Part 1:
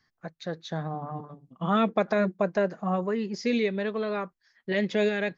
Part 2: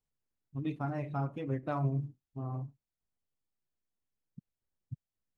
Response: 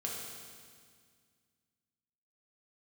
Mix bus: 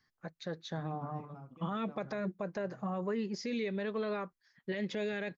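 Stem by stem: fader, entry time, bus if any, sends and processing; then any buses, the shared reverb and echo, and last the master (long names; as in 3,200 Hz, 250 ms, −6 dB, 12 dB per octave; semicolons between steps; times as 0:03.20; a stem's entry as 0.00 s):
−4.5 dB, 0.00 s, no send, notch filter 690 Hz, Q 12
−11.0 dB, 0.20 s, no send, automatic ducking −9 dB, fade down 1.95 s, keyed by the first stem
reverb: not used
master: brickwall limiter −27 dBFS, peak gain reduction 10 dB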